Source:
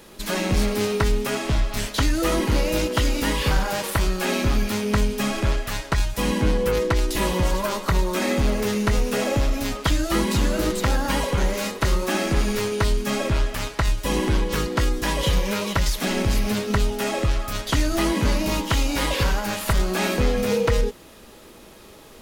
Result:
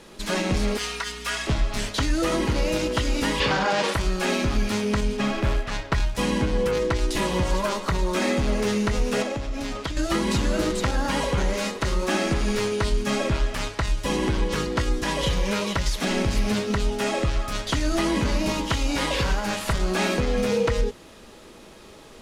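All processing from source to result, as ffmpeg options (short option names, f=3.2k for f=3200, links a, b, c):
-filter_complex "[0:a]asettb=1/sr,asplit=3[a][b][c];[a]atrim=end=0.774[d];[b]atrim=start=0.77:end=1.47,asetpts=PTS-STARTPTS,afade=t=in:d=0.004:c=qsin,afade=t=out:st=0.696:d=0.004:c=qsin,highpass=1.1k,aeval=exprs='val(0)+0.00794*(sin(2*PI*60*n/s)+sin(2*PI*2*60*n/s)/2+sin(2*PI*3*60*n/s)/3+sin(2*PI*4*60*n/s)/4+sin(2*PI*5*60*n/s)/5)':c=same,aecho=1:1:4.2:0.81,atrim=end_sample=30870[e];[c]atrim=start=1.466[f];[d][e]acrossfade=d=0.004:c1=hsin:c2=qsin[g];[g][f]acrossfade=d=0.004:c1=qsin:c2=hsin,asettb=1/sr,asplit=3[h][i][j];[h]atrim=end=3.404[k];[i]atrim=start=3.4:end=3.94,asetpts=PTS-STARTPTS,afade=t=in:d=0.004:c=qsin,afade=t=out:st=0.536:d=0.004:c=qsin,highpass=170,lowpass=5.2k,acontrast=75[l];[j]atrim=start=3.936[m];[k][l]acrossfade=d=0.004:c1=hsin:c2=qsin[n];[n][m]acrossfade=d=0.004:c1=qsin:c2=hsin,asettb=1/sr,asplit=3[o][p][q];[o]atrim=end=5.174[r];[p]atrim=start=5.17:end=6.15,asetpts=PTS-STARTPTS,afade=t=in:d=0.004:c=qsin,afade=t=out:st=0.976:d=0.004:c=qsin,asoftclip=type=hard:threshold=-12.5dB,adynamicsmooth=sensitivity=2:basefreq=3.9k,acrusher=bits=6:mode=log:mix=0:aa=0.000001[s];[q]atrim=start=6.146[t];[r][s]acrossfade=d=0.004:c1=hsin:c2=qsin[u];[u][t]acrossfade=d=0.004:c1=qsin:c2=hsin,asettb=1/sr,asplit=3[v][w][x];[v]atrim=end=9.224[y];[w]atrim=start=9.22:end=9.97,asetpts=PTS-STARTPTS,afade=t=in:d=0.004:c=qsin,afade=t=out:st=0.746:d=0.004:c=qsin,highshelf=f=11k:g=-8,acompressor=threshold=-24dB:ratio=10:attack=3.2:release=140:knee=1:detection=peak[z];[x]atrim=start=9.966[aa];[y][z]acrossfade=d=0.004:c1=hsin:c2=qsin[ab];[ab][aa]acrossfade=d=0.004:c1=qsin:c2=hsin,lowpass=8.9k,alimiter=limit=-13dB:level=0:latency=1:release=95,bandreject=f=50:t=h:w=6,bandreject=f=100:t=h:w=6"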